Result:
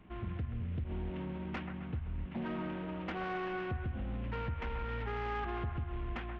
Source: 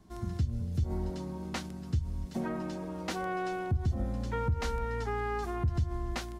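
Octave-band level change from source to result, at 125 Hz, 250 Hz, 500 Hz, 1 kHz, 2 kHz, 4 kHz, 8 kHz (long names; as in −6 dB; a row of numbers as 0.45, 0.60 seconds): −6.0 dB, −3.5 dB, −5.0 dB, −4.0 dB, −1.5 dB, −6.0 dB, below −25 dB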